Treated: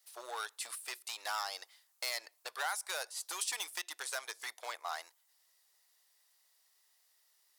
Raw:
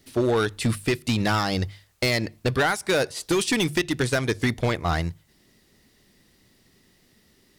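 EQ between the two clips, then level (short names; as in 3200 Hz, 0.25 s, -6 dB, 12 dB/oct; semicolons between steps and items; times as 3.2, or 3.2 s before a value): inverse Chebyshev high-pass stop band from 190 Hz, stop band 70 dB; bell 2200 Hz -12.5 dB 2.7 oct; -2.5 dB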